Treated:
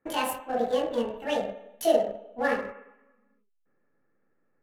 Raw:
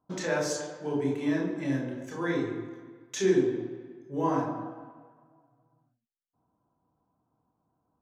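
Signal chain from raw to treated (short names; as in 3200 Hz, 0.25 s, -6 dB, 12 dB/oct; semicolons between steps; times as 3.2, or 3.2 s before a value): Wiener smoothing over 15 samples; in parallel at -7 dB: backlash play -28.5 dBFS; on the sum: bell 630 Hz -4 dB 0.63 oct; speed mistake 45 rpm record played at 78 rpm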